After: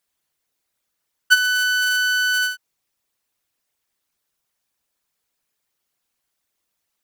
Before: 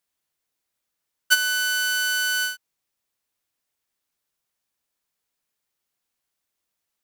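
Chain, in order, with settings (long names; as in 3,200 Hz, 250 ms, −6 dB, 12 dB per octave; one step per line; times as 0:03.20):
spectral envelope exaggerated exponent 1.5
level +4 dB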